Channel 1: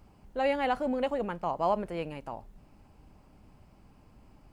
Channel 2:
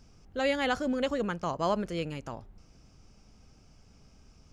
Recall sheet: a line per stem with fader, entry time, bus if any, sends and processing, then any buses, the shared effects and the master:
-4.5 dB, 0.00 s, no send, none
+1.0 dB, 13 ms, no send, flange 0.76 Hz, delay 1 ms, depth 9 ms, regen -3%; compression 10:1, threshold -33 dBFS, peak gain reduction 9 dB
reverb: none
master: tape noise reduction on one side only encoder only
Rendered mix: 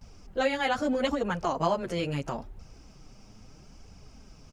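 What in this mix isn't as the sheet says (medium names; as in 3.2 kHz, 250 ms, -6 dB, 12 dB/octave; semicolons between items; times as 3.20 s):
stem 2 +1.0 dB -> +9.0 dB; master: missing tape noise reduction on one side only encoder only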